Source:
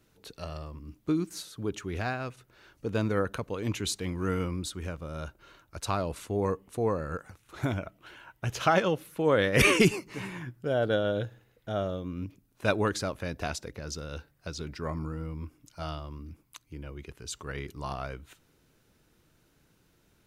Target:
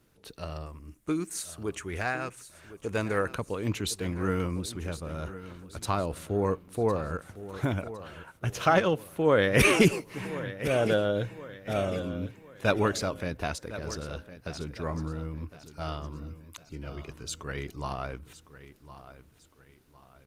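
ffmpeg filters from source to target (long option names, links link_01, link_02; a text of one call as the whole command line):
ffmpeg -i in.wav -filter_complex "[0:a]asettb=1/sr,asplit=3[link_01][link_02][link_03];[link_01]atrim=end=0.664[link_04];[link_02]atrim=start=0.66:end=3.3,asetpts=PTS-STARTPTS,afade=type=in:duration=0.004:curve=qsin,afade=type=out:start_time=2.636:duration=0.004:curve=qsin,equalizer=frequency=125:width_type=o:width=1:gain=-5,equalizer=frequency=250:width_type=o:width=1:gain=-4,equalizer=frequency=2000:width_type=o:width=1:gain=5,equalizer=frequency=4000:width_type=o:width=1:gain=-5,equalizer=frequency=8000:width_type=o:width=1:gain=11[link_05];[link_03]atrim=start=3.296[link_06];[link_04][link_05]acrossfade=duration=0.004:curve1=hsin:curve2=qsin[link_07];[link_07][link_06]acrossfade=duration=0.004:curve1=qsin:curve2=hsin,aecho=1:1:1058|2116|3174|4232:0.2|0.0798|0.0319|0.0128,volume=1.5dB" -ar 48000 -c:a libopus -b:a 24k out.opus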